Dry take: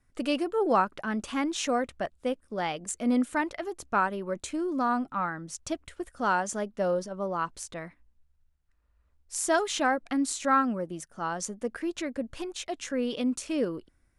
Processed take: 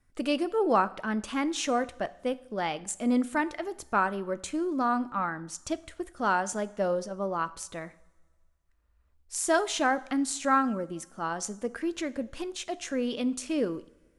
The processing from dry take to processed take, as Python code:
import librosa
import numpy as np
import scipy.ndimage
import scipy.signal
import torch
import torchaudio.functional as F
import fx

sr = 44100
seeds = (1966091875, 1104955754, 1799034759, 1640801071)

y = fx.rev_double_slope(x, sr, seeds[0], early_s=0.61, late_s=1.9, knee_db=-17, drr_db=15.0)